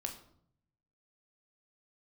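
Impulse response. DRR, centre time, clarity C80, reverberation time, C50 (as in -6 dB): 4.0 dB, 16 ms, 13.5 dB, 0.65 s, 10.0 dB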